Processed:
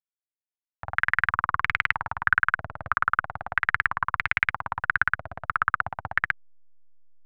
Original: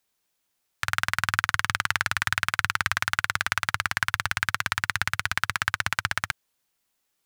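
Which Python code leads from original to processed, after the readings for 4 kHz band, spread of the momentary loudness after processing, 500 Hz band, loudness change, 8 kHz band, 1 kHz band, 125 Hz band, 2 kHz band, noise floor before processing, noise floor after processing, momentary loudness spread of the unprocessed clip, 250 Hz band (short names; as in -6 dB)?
-13.0 dB, 7 LU, +2.0 dB, +1.0 dB, under -25 dB, +3.0 dB, -4.0 dB, +1.5 dB, -76 dBFS, under -85 dBFS, 3 LU, -3.0 dB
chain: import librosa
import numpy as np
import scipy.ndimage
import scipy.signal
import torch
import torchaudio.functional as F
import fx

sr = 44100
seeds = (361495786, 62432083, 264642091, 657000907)

y = fx.backlash(x, sr, play_db=-35.0)
y = fx.vibrato(y, sr, rate_hz=5.1, depth_cents=27.0)
y = fx.filter_held_lowpass(y, sr, hz=3.1, low_hz=640.0, high_hz=2200.0)
y = y * 10.0 ** (-3.5 / 20.0)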